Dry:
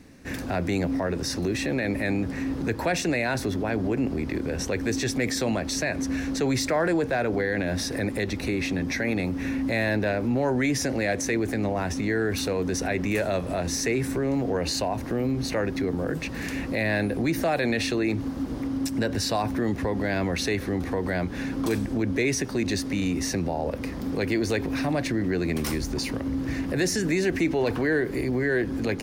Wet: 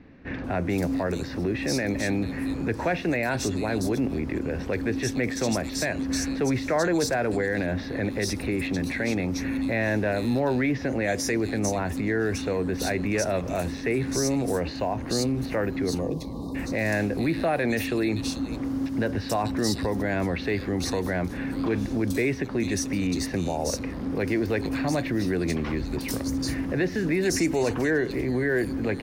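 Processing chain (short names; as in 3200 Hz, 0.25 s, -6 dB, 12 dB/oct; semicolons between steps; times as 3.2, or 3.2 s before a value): spectral delete 16–16.55, 1200–3600 Hz; bands offset in time lows, highs 0.44 s, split 3400 Hz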